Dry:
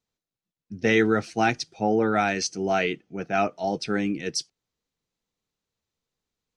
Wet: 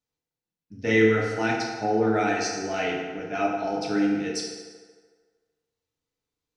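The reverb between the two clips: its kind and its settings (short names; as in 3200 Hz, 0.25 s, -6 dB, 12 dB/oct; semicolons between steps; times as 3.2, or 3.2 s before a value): FDN reverb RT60 1.6 s, low-frequency decay 0.75×, high-frequency decay 0.65×, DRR -3.5 dB; gain -6.5 dB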